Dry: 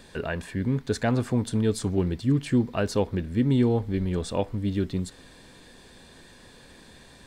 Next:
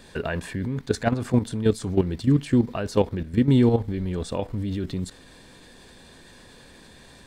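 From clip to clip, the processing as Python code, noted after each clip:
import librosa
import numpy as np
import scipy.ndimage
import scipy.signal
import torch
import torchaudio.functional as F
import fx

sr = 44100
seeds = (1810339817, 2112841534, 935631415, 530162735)

y = fx.level_steps(x, sr, step_db=11)
y = F.gain(torch.from_numpy(y), 6.0).numpy()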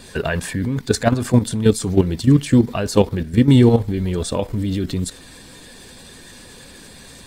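y = fx.spec_quant(x, sr, step_db=15)
y = fx.high_shelf(y, sr, hz=5300.0, db=9.5)
y = F.gain(torch.from_numpy(y), 6.5).numpy()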